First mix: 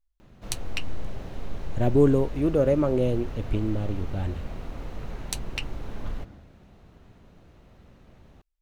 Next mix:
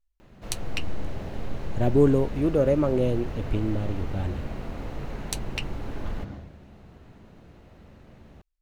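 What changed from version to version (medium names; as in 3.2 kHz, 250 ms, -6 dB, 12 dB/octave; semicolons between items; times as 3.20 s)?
background: send +10.0 dB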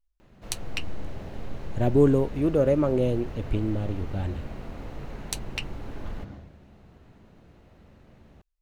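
background -3.5 dB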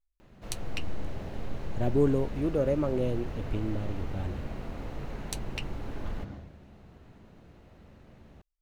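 speech -5.5 dB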